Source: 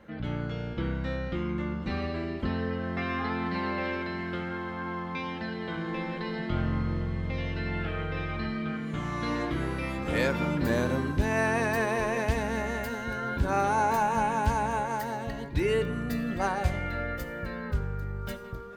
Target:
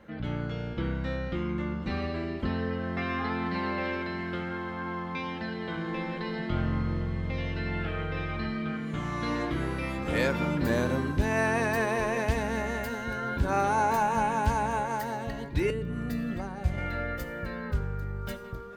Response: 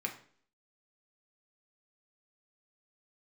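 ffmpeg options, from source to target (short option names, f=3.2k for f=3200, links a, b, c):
-filter_complex "[0:a]asettb=1/sr,asplit=3[a][b][c];[a]atrim=end=15.704[d];[b]atrim=start=15.7:end=16.78,asetpts=PTS-STARTPTS,afade=t=in:d=0.004:c=qsin,afade=t=out:st=1.076:d=0.004:c=qsin,acrossover=split=300[e][f];[f]acompressor=threshold=-38dB:ratio=10[g];[e][g]amix=inputs=2:normalize=0[h];[c]atrim=start=16.776[i];[d][h]acrossfade=d=0.004:c1=hsin:c2=qsin[j];[j][i]acrossfade=d=0.004:c1=qsin:c2=hsin"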